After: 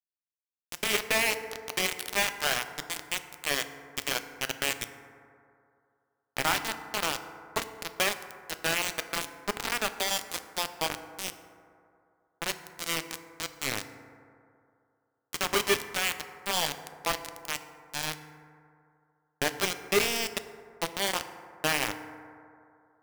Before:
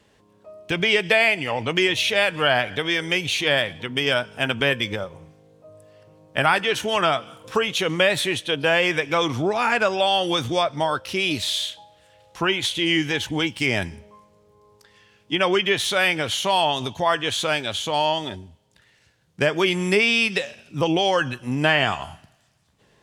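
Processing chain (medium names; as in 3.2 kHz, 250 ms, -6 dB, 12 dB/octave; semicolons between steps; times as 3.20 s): feedback comb 400 Hz, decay 0.5 s, mix 70%; bit crusher 4-bit; FDN reverb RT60 2.5 s, low-frequency decay 0.85×, high-frequency decay 0.3×, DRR 9 dB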